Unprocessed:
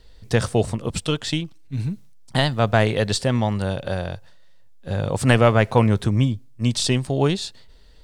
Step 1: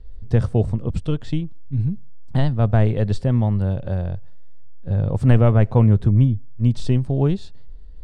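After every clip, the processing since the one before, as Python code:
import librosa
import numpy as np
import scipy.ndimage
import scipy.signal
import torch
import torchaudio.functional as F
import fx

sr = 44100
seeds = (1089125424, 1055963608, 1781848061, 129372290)

y = fx.tilt_eq(x, sr, slope=-4.0)
y = y * librosa.db_to_amplitude(-7.5)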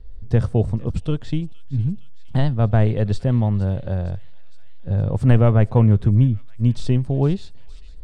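y = fx.echo_wet_highpass(x, sr, ms=462, feedback_pct=67, hz=2600.0, wet_db=-15.0)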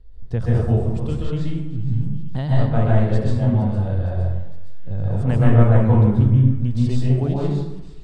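y = fx.rev_plate(x, sr, seeds[0], rt60_s=1.0, hf_ratio=0.5, predelay_ms=115, drr_db=-6.0)
y = y * librosa.db_to_amplitude(-6.5)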